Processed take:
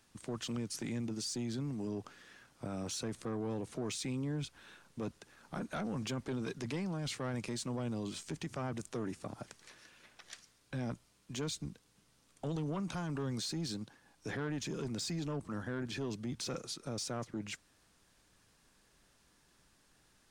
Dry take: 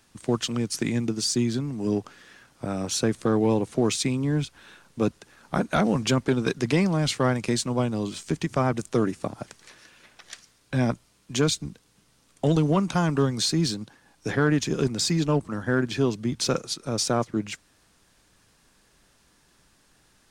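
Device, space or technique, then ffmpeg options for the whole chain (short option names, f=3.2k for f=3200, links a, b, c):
soft clipper into limiter: -af "asoftclip=type=tanh:threshold=-16.5dB,alimiter=level_in=1dB:limit=-24dB:level=0:latency=1:release=20,volume=-1dB,volume=-7dB"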